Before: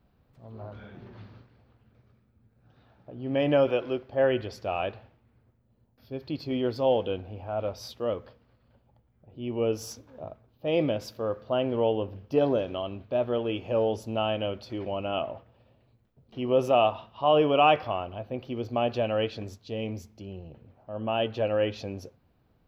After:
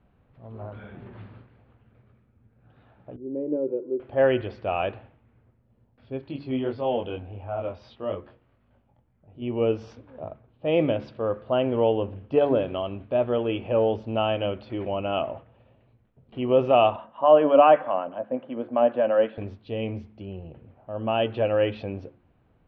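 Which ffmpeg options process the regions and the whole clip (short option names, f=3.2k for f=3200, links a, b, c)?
-filter_complex "[0:a]asettb=1/sr,asplit=3[a][b][c];[a]atrim=end=3.164[d];[b]atrim=start=3.16:end=4,asetpts=PTS-STARTPTS,afade=t=in:d=0.004:c=qsin,afade=t=out:st=0.836:d=0.004:c=qsin,asuperpass=centerf=290:order=4:qfactor=1.6,aecho=1:1:2.1:0.57,atrim=end_sample=37044[e];[c]atrim=start=3.996[f];[d][e]acrossfade=d=0.004:c1=hsin:c2=qsin[g];[g][f]acrossfade=d=0.004:c1=qsin:c2=hsin,asettb=1/sr,asplit=3[h][i][j];[h]atrim=end=6.214[k];[i]atrim=start=6.21:end=9.42,asetpts=PTS-STARTPTS,afade=t=in:d=0.004:c=qsin,afade=t=out:st=3.206:d=0.004:c=qsin,equalizer=f=490:w=7.9:g=-4.5,flanger=delay=20:depth=3.3:speed=1.6[l];[j]atrim=start=9.416[m];[k][l]acrossfade=d=0.004:c1=hsin:c2=qsin[n];[n][m]acrossfade=d=0.004:c1=qsin:c2=hsin,asettb=1/sr,asplit=3[o][p][q];[o]atrim=end=16.964[r];[p]atrim=start=16.96:end=19.38,asetpts=PTS-STARTPTS,afade=t=in:d=0.004:c=qsin,afade=t=out:st=2.416:d=0.004:c=qsin,acrossover=split=960[s][t];[s]aeval=exprs='val(0)*(1-0.5/2+0.5/2*cos(2*PI*8*n/s))':c=same[u];[t]aeval=exprs='val(0)*(1-0.5/2-0.5/2*cos(2*PI*8*n/s))':c=same[v];[u][v]amix=inputs=2:normalize=0,highpass=f=180:w=0.5412,highpass=f=180:w=1.3066,equalizer=f=270:t=q:w=4:g=6,equalizer=f=390:t=q:w=4:g=-9,equalizer=f=560:t=q:w=4:g=9,equalizer=f=980:t=q:w=4:g=4,equalizer=f=1.6k:t=q:w=4:g=6,equalizer=f=2.5k:t=q:w=4:g=-7,lowpass=f=2.9k:w=0.5412,lowpass=f=2.9k:w=1.3066[w];[q]atrim=start=19.376[x];[r][w]acrossfade=d=0.004:c1=hsin:c2=qsin[y];[y][x]acrossfade=d=0.004:c1=qsin:c2=hsin,lowpass=f=3.1k:w=0.5412,lowpass=f=3.1k:w=1.3066,bandreject=f=71.32:t=h:w=4,bandreject=f=142.64:t=h:w=4,bandreject=f=213.96:t=h:w=4,bandreject=f=285.28:t=h:w=4,bandreject=f=356.6:t=h:w=4,volume=3.5dB"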